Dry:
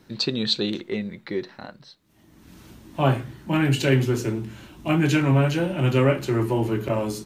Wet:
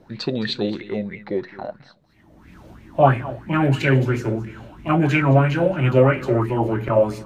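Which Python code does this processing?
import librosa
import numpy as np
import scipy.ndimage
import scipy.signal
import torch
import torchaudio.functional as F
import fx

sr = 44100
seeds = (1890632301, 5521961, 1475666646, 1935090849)

y = fx.tilt_eq(x, sr, slope=-2.0)
y = y + 10.0 ** (-16.5 / 20.0) * np.pad(y, (int(215 * sr / 1000.0), 0))[:len(y)]
y = fx.bell_lfo(y, sr, hz=3.0, low_hz=560.0, high_hz=2300.0, db=17)
y = y * librosa.db_to_amplitude(-3.5)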